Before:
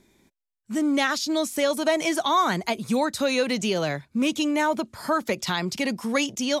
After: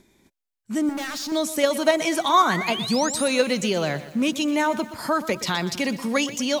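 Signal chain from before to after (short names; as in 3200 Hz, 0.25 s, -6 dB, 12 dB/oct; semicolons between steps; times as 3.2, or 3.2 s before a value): in parallel at -2 dB: level quantiser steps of 20 dB; 0.89–1.32 on the sum: overloaded stage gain 29 dB; 2.26–3.28 painted sound rise 890–11000 Hz -31 dBFS; lo-fi delay 0.122 s, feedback 55%, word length 7-bit, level -14 dB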